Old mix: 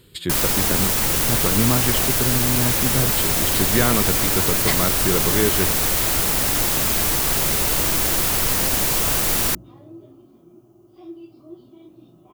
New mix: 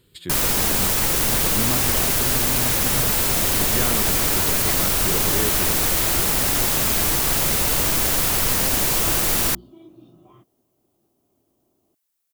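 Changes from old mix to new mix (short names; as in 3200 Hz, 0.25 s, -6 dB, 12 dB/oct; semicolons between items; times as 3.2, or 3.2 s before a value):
speech -8.0 dB; second sound: entry -2.00 s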